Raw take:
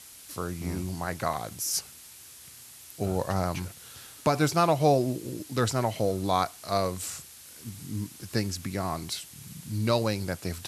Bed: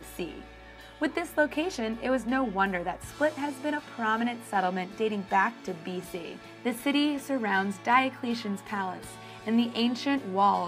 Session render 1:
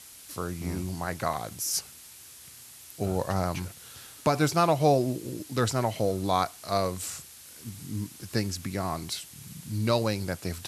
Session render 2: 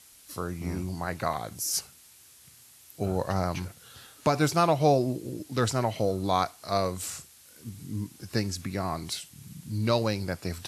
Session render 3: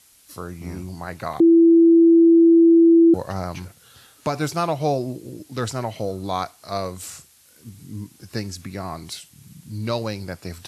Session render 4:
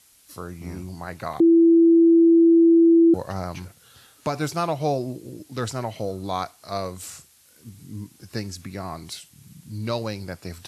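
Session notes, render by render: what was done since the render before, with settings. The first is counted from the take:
no audible change
noise print and reduce 6 dB
1.40–3.14 s: bleep 333 Hz -9 dBFS
trim -2 dB

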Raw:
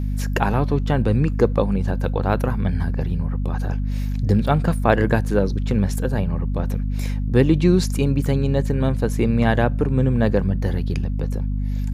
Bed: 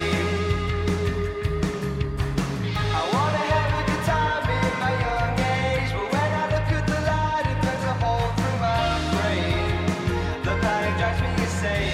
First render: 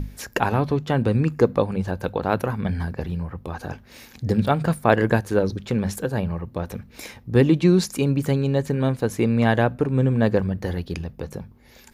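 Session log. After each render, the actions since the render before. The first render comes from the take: hum notches 50/100/150/200/250 Hz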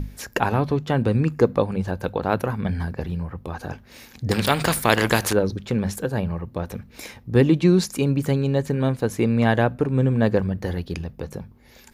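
4.31–5.33 s: spectrum-flattening compressor 2:1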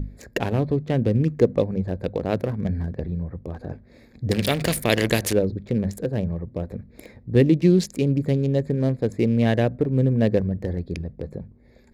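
local Wiener filter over 15 samples; high-order bell 1.1 kHz -10.5 dB 1.2 oct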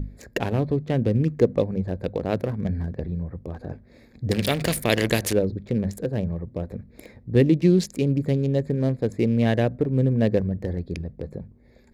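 trim -1 dB

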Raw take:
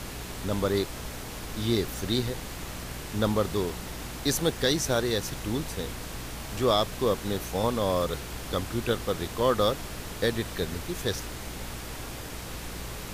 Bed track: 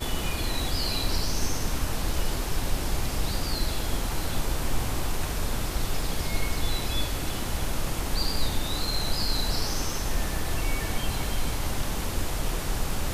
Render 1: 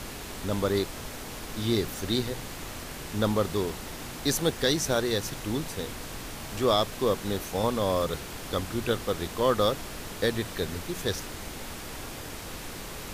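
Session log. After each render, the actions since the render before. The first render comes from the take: de-hum 60 Hz, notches 3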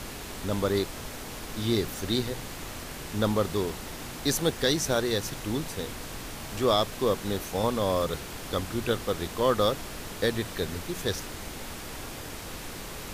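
no audible change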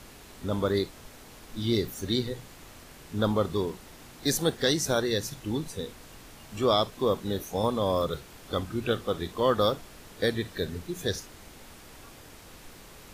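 noise print and reduce 10 dB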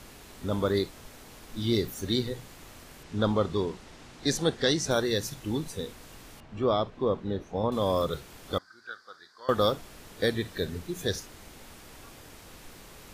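3.03–4.91 s: low-pass 7 kHz; 6.40–7.72 s: tape spacing loss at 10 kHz 27 dB; 8.58–9.49 s: two resonant band-passes 2.7 kHz, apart 1.6 oct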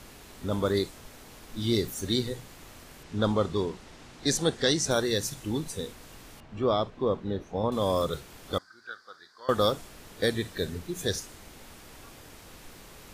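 dynamic bell 8.3 kHz, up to +6 dB, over -51 dBFS, Q 1.1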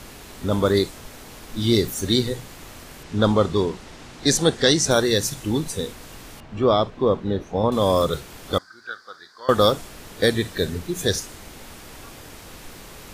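trim +7.5 dB

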